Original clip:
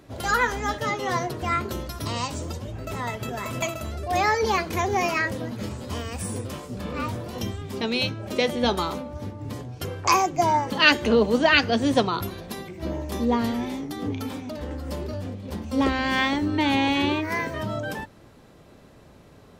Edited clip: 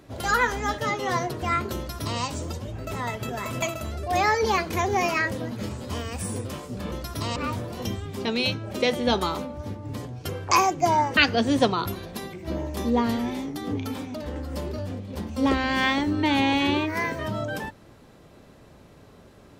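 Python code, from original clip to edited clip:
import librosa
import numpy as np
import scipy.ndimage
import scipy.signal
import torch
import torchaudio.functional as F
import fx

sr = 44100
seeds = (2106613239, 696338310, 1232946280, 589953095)

y = fx.edit(x, sr, fx.duplicate(start_s=1.77, length_s=0.44, to_s=6.92),
    fx.cut(start_s=10.73, length_s=0.79), tone=tone)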